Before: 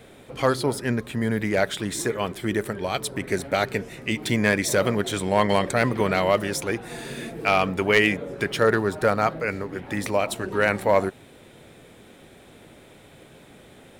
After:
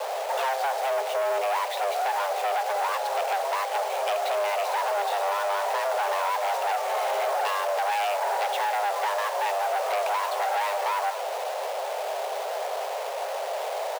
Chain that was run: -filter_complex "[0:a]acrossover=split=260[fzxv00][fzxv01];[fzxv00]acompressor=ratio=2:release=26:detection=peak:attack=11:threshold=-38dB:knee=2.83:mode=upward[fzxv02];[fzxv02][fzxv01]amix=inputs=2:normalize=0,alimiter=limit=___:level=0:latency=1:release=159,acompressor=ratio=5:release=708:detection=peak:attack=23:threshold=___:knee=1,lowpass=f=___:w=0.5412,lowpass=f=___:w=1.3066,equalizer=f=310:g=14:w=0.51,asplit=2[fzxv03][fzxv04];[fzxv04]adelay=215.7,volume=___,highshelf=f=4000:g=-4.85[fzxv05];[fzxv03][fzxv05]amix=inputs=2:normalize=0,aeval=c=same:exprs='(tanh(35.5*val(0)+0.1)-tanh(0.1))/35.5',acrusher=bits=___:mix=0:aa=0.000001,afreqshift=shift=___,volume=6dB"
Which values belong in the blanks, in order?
-14dB, -28dB, 3300, 3300, -20dB, 6, 400